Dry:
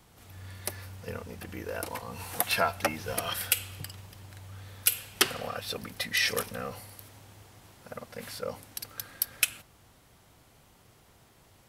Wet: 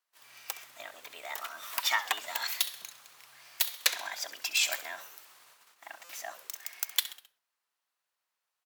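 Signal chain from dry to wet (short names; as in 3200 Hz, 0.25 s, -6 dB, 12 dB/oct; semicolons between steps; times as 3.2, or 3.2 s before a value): tracing distortion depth 0.068 ms; gate -53 dBFS, range -23 dB; HPF 740 Hz 12 dB/oct; frequency-shifting echo 89 ms, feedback 48%, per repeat -62 Hz, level -15 dB; speed mistake 33 rpm record played at 45 rpm; stuck buffer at 6.04, samples 256, times 8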